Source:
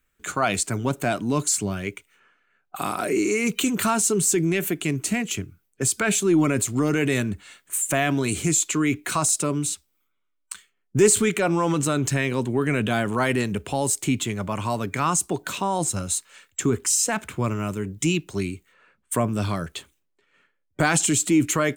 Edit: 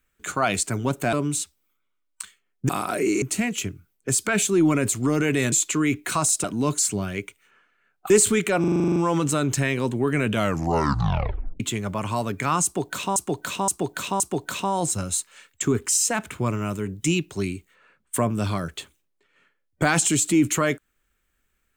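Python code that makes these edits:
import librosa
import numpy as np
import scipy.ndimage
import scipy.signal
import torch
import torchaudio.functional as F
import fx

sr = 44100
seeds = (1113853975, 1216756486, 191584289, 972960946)

y = fx.edit(x, sr, fx.swap(start_s=1.13, length_s=1.66, other_s=9.44, other_length_s=1.56),
    fx.cut(start_s=3.32, length_s=1.63),
    fx.cut(start_s=7.25, length_s=1.27),
    fx.stutter(start_s=11.5, slice_s=0.04, count=10),
    fx.tape_stop(start_s=12.84, length_s=1.3),
    fx.repeat(start_s=15.18, length_s=0.52, count=4), tone=tone)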